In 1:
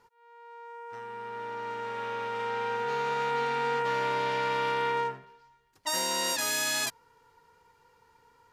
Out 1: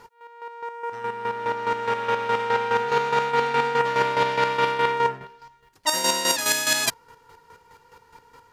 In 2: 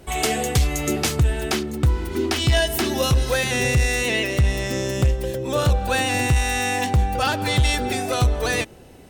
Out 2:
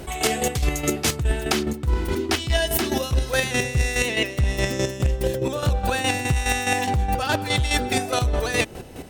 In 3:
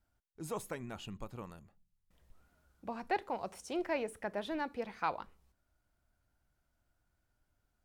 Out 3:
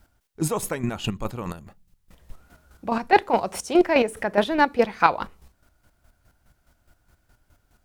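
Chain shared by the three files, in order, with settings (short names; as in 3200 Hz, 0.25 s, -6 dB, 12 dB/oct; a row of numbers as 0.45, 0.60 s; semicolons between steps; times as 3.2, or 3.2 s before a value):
chopper 4.8 Hz, depth 60%, duty 30%; reverse; compressor 6:1, threshold -31 dBFS; reverse; match loudness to -23 LUFS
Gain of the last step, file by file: +14.5, +12.0, +20.5 dB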